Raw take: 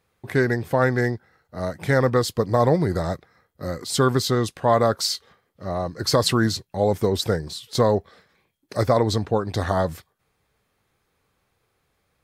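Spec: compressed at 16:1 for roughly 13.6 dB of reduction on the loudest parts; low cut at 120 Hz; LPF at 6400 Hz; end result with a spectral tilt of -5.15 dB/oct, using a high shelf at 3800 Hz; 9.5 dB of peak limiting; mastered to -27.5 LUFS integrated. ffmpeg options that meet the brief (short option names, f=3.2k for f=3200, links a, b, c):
-af "highpass=120,lowpass=6.4k,highshelf=f=3.8k:g=-8,acompressor=threshold=-27dB:ratio=16,volume=9dB,alimiter=limit=-15dB:level=0:latency=1"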